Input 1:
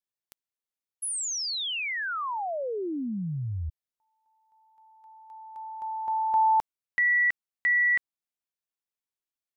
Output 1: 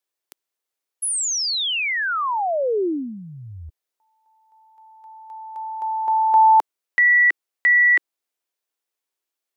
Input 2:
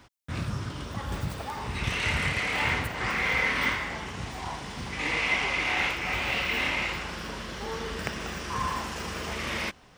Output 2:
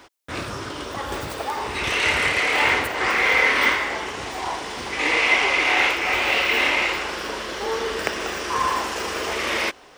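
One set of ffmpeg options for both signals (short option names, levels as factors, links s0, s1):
-af "lowshelf=f=250:t=q:w=1.5:g=-11.5,volume=2.51"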